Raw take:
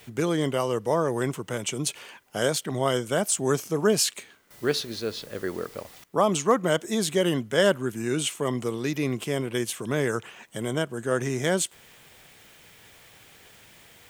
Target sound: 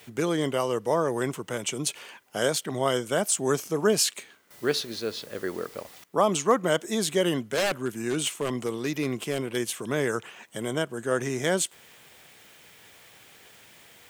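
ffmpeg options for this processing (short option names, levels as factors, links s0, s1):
-filter_complex "[0:a]lowshelf=f=97:g=-11.5,asplit=3[s0][s1][s2];[s0]afade=t=out:st=7.39:d=0.02[s3];[s1]aeval=exprs='0.106*(abs(mod(val(0)/0.106+3,4)-2)-1)':c=same,afade=t=in:st=7.39:d=0.02,afade=t=out:st=9.55:d=0.02[s4];[s2]afade=t=in:st=9.55:d=0.02[s5];[s3][s4][s5]amix=inputs=3:normalize=0"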